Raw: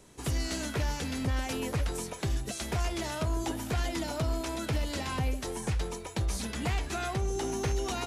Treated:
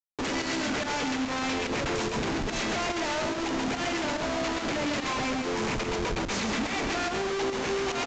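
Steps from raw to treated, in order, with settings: Chebyshev high-pass 230 Hz, order 3; bell 2300 Hz +7 dB 0.52 oct; notches 60/120/180/240/300 Hz; in parallel at -3 dB: limiter -30.5 dBFS, peak gain reduction 10.5 dB; on the sum: Schmitt trigger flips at -36 dBFS; pump 144 bpm, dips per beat 1, -15 dB, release 90 ms; on a send: echo 0.135 s -6 dB; on the sum: downsampling 16000 Hz; gain +3 dB

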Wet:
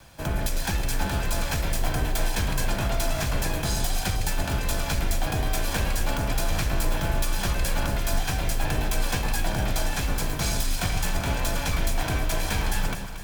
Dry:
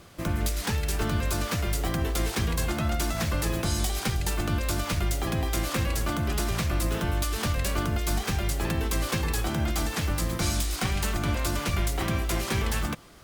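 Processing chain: minimum comb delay 1.2 ms; echo with dull and thin repeats by turns 0.115 s, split 1000 Hz, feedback 74%, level -7.5 dB; frequency shift -25 Hz; gain +2 dB

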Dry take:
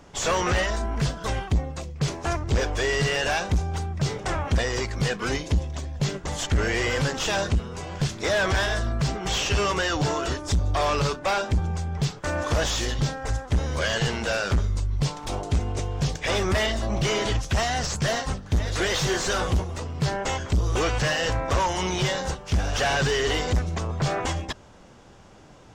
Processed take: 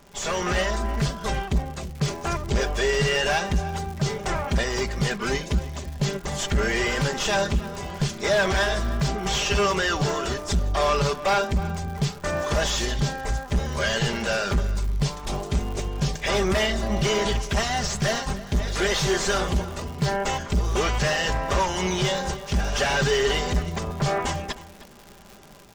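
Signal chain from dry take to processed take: comb 5 ms, depth 52%; crackle 170/s -33 dBFS; AGC gain up to 4 dB; outdoor echo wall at 53 m, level -16 dB; gain -4 dB

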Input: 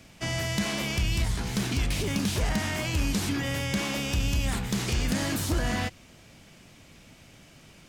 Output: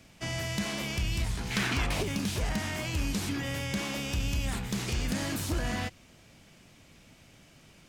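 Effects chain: rattling part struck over -30 dBFS, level -33 dBFS; 1.5–2.02 bell 2400 Hz -> 700 Hz +12.5 dB 2 oct; gain -4 dB

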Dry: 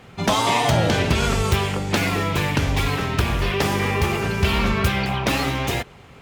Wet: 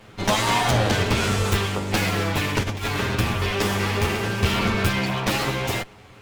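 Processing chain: minimum comb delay 9.5 ms; 2.62–3.16 negative-ratio compressor -25 dBFS, ratio -0.5

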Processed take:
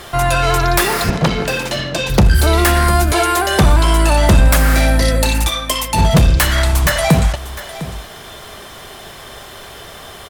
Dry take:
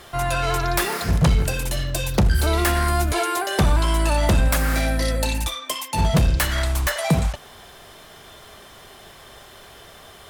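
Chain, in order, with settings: 1.1–2.1 three-band isolator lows -22 dB, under 160 Hz, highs -19 dB, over 6300 Hz; in parallel at -2.5 dB: limiter -19.5 dBFS, peak gain reduction 10.5 dB; on the sum: echo 0.704 s -15 dB; gain +5 dB

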